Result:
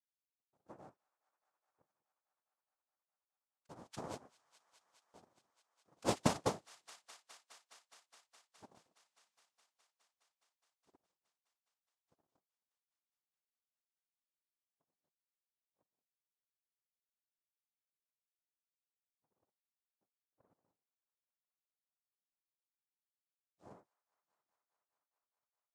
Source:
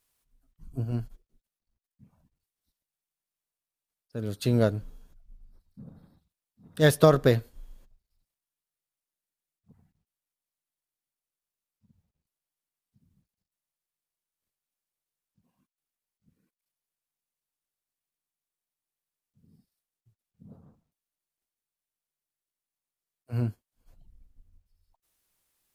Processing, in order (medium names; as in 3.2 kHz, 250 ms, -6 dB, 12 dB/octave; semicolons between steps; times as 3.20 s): Doppler pass-by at 9.18 s, 38 m/s, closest 6.7 m; tone controls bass -1 dB, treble +5 dB; noise-vocoded speech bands 2; feedback echo behind a high-pass 208 ms, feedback 84%, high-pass 1.5 kHz, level -14.5 dB; transient shaper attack +6 dB, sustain -4 dB; trim +6.5 dB